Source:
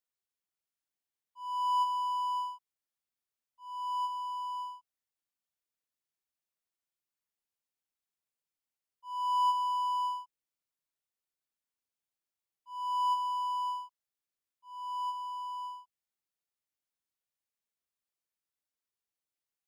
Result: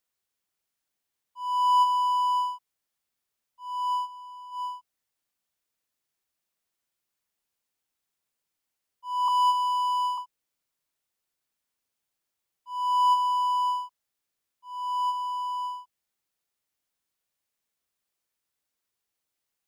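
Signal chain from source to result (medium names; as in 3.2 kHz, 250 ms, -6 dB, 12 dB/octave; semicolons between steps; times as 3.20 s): 3.93–4.65 s: dip -14 dB, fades 0.14 s; 9.28–10.18 s: high-pass 970 Hz 24 dB/octave; trim +8 dB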